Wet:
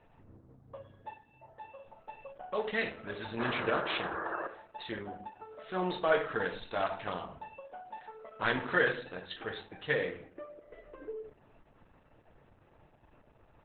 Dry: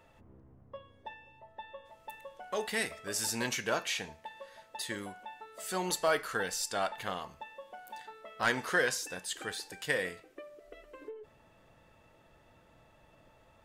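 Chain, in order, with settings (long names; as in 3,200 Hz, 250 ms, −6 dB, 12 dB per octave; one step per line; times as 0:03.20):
adaptive Wiener filter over 9 samples
high-shelf EQ 8,900 Hz −5.5 dB
sound drawn into the spectrogram noise, 0:03.38–0:04.47, 310–1,800 Hz −38 dBFS
rectangular room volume 60 cubic metres, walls mixed, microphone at 0.47 metres
level +1 dB
Opus 8 kbit/s 48,000 Hz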